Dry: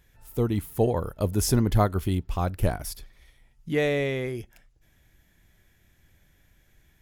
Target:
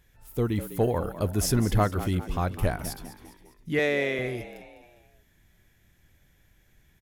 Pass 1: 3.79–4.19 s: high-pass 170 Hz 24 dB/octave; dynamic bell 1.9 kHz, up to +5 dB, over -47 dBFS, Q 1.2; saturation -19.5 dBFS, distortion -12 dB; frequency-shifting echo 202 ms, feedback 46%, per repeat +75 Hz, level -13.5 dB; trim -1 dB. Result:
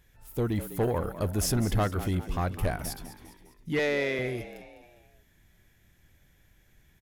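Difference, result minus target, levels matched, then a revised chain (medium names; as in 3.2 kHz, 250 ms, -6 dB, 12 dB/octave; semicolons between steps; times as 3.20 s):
saturation: distortion +11 dB
3.79–4.19 s: high-pass 170 Hz 24 dB/octave; dynamic bell 1.9 kHz, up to +5 dB, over -47 dBFS, Q 1.2; saturation -10.5 dBFS, distortion -23 dB; frequency-shifting echo 202 ms, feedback 46%, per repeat +75 Hz, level -13.5 dB; trim -1 dB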